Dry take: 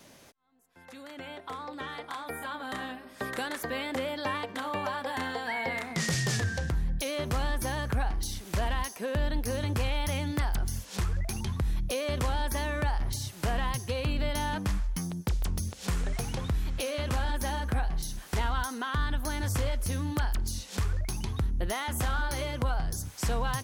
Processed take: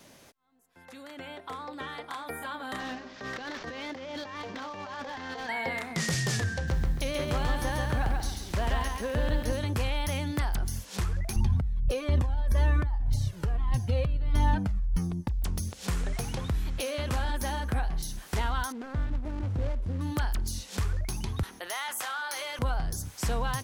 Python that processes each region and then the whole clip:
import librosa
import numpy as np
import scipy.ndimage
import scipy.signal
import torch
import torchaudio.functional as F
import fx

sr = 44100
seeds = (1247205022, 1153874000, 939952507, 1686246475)

y = fx.chain(x, sr, fx.cvsd(bps=32000),
    fx.over_compress(threshold_db=-38.0, ratio=-1.0),
    fx.clip_hard(threshold_db=-31.5), at=(2.79, 5.49))
y = fx.chain(y, sr, fx.high_shelf(hz=8200.0, db=-9.0),
    fx.echo_crushed(ms=137, feedback_pct=35, bits=9, wet_db=-3.5), at=(6.54, 9.53))
y = fx.chain(y, sr, fx.tilt_eq(slope=-2.5),
    fx.over_compress(threshold_db=-23.0, ratio=-1.0),
    fx.comb_cascade(direction='falling', hz=1.3), at=(11.36, 15.44))
y = fx.chain(y, sr, fx.median_filter(points=41),
    fx.air_absorb(metres=51.0), at=(18.72, 20.01))
y = fx.chain(y, sr, fx.highpass(hz=840.0, slope=12),
    fx.env_flatten(amount_pct=50), at=(21.43, 22.59))